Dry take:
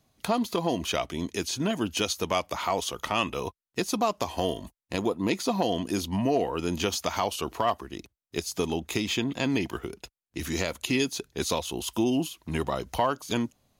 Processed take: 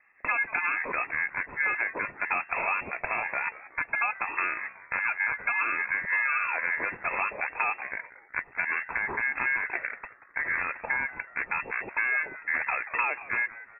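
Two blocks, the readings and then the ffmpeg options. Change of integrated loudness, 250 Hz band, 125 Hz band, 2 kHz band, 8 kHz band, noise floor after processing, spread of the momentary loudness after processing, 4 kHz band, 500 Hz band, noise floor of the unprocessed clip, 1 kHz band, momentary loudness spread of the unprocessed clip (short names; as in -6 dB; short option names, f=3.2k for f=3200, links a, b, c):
+0.5 dB, -21.0 dB, under -15 dB, +12.0 dB, under -40 dB, -55 dBFS, 7 LU, under -40 dB, -13.0 dB, under -85 dBFS, -1.5 dB, 8 LU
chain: -filter_complex "[0:a]equalizer=f=380:t=o:w=0.32:g=-11.5,asplit=2[a][b];[b]alimiter=limit=-20dB:level=0:latency=1:release=20,volume=2.5dB[c];[a][c]amix=inputs=2:normalize=0,acompressor=threshold=-23dB:ratio=6,aeval=exprs='val(0)*sin(2*PI*800*n/s)':c=same,asplit=2[d][e];[e]asplit=4[f][g][h][i];[f]adelay=185,afreqshift=130,volume=-17dB[j];[g]adelay=370,afreqshift=260,volume=-23.7dB[k];[h]adelay=555,afreqshift=390,volume=-30.5dB[l];[i]adelay=740,afreqshift=520,volume=-37.2dB[m];[j][k][l][m]amix=inputs=4:normalize=0[n];[d][n]amix=inputs=2:normalize=0,lowpass=f=2.3k:t=q:w=0.5098,lowpass=f=2.3k:t=q:w=0.6013,lowpass=f=2.3k:t=q:w=0.9,lowpass=f=2.3k:t=q:w=2.563,afreqshift=-2700,volume=2dB"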